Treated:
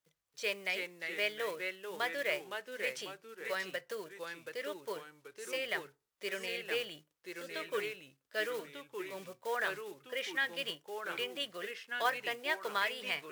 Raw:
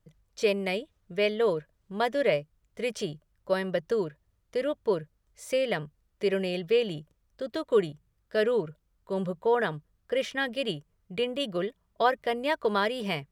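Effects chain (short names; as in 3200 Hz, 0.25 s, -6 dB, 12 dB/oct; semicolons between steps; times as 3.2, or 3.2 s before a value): block floating point 5-bit; HPF 1300 Hz 6 dB/oct; FDN reverb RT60 0.32 s, low-frequency decay 0.9×, high-frequency decay 0.65×, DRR 16 dB; echoes that change speed 0.269 s, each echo -2 st, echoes 2, each echo -6 dB; dynamic EQ 1900 Hz, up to +6 dB, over -46 dBFS, Q 1.1; gain -5.5 dB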